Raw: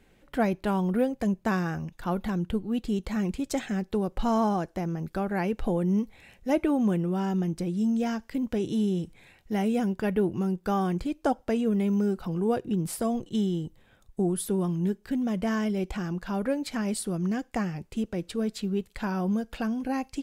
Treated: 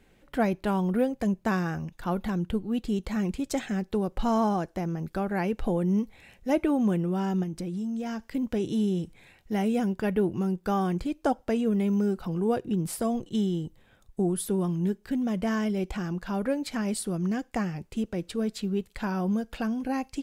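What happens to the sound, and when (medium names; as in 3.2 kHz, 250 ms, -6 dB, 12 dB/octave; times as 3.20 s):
7.43–8.33 s: compression, threshold -29 dBFS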